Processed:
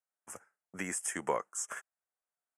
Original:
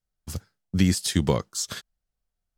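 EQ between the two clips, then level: HPF 720 Hz 12 dB/oct; Butterworth band-stop 4100 Hz, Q 0.66; LPF 9700 Hz 24 dB/oct; 0.0 dB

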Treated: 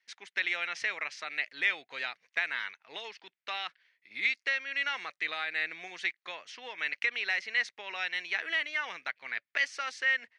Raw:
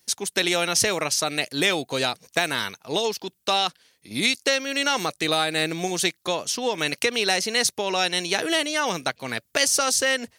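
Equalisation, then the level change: band-pass 2000 Hz, Q 3.3; air absorption 94 m; 0.0 dB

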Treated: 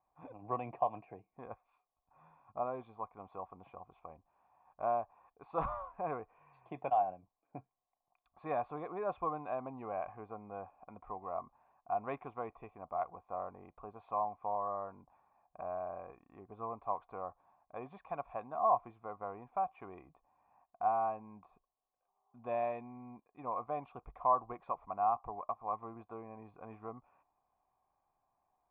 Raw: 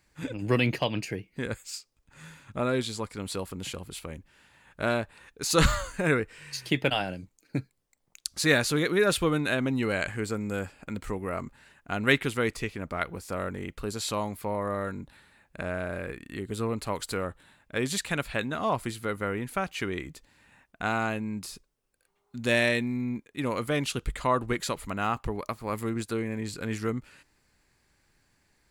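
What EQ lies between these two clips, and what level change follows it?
vocal tract filter a; +6.5 dB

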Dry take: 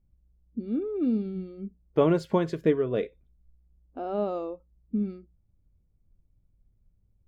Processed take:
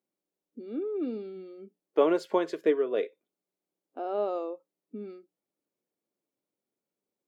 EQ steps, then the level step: HPF 320 Hz 24 dB/oct; 0.0 dB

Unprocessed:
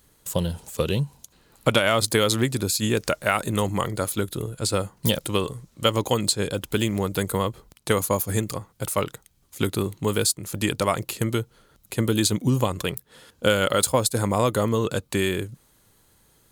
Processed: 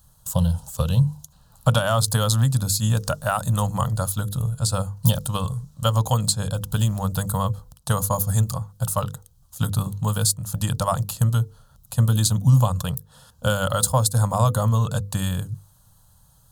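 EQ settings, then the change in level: resonant low shelf 190 Hz +6.5 dB, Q 1.5; notches 50/100/150/200/250/300/350/400/450/500 Hz; fixed phaser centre 900 Hz, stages 4; +2.5 dB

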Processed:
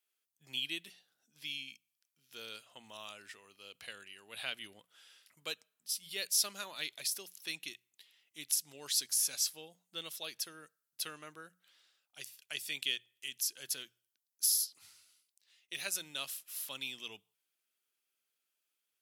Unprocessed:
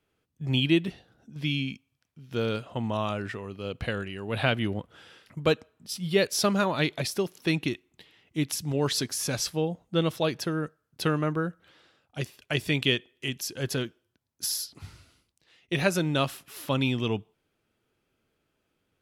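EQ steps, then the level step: dynamic EQ 1100 Hz, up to -3 dB, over -40 dBFS, Q 0.88; differentiator; notches 60/120/180 Hz; 0.0 dB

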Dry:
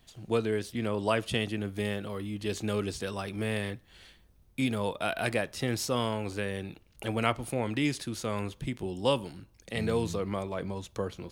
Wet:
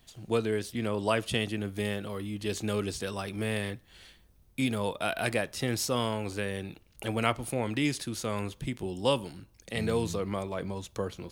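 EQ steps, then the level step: high shelf 5400 Hz +4 dB; 0.0 dB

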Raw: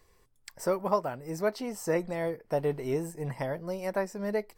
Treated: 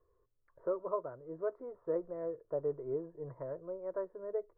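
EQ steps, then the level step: LPF 1100 Hz 24 dB/oct; low shelf 110 Hz -6.5 dB; fixed phaser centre 800 Hz, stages 6; -4.5 dB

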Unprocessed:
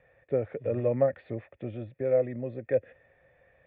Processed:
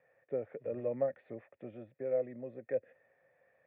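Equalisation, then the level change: dynamic EQ 1200 Hz, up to -4 dB, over -40 dBFS, Q 0.9; BPF 210–2200 Hz; bell 320 Hz -3 dB 0.77 oct; -6.0 dB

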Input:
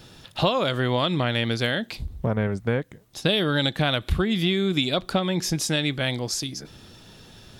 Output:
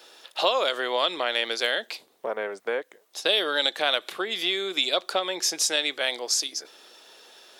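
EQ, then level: HPF 420 Hz 24 dB/oct; dynamic EQ 6200 Hz, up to +5 dB, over -39 dBFS, Q 0.93; 0.0 dB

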